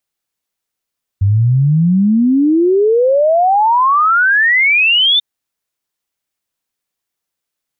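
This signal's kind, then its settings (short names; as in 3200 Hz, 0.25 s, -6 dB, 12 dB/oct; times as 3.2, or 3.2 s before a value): log sweep 95 Hz -> 3600 Hz 3.99 s -8 dBFS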